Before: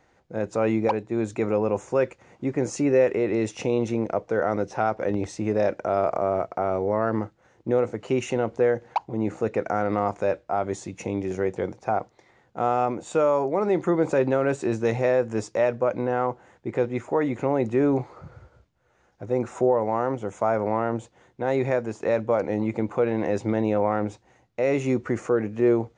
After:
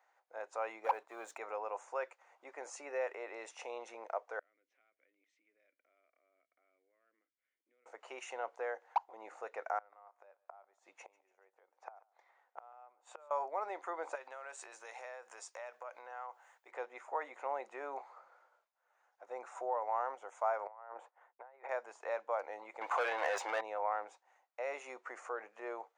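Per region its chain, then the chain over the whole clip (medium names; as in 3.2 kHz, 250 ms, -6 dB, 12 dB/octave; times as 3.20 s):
0.84–1.38 s: high-pass 100 Hz 6 dB/octave + waveshaping leveller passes 1 + tape noise reduction on one side only encoder only
4.39–7.86 s: compression 2:1, threshold -44 dBFS + vowel filter i
9.78–13.31 s: treble shelf 5.7 kHz -10 dB + inverted gate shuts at -21 dBFS, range -24 dB + thinning echo 143 ms, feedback 43%, high-pass 180 Hz, level -22 dB
14.15–16.71 s: tilt EQ +3 dB/octave + compression 4:1, threshold -31 dBFS
20.67–21.69 s: expander -53 dBFS + three-band isolator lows -13 dB, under 400 Hz, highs -20 dB, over 2.1 kHz + compressor with a negative ratio -35 dBFS, ratio -0.5
22.81–23.61 s: treble shelf 2.4 kHz +9 dB + overdrive pedal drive 22 dB, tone 2.9 kHz, clips at -10 dBFS
whole clip: high-pass 750 Hz 24 dB/octave; peaking EQ 4.5 kHz -11.5 dB 2.9 oct; trim -3.5 dB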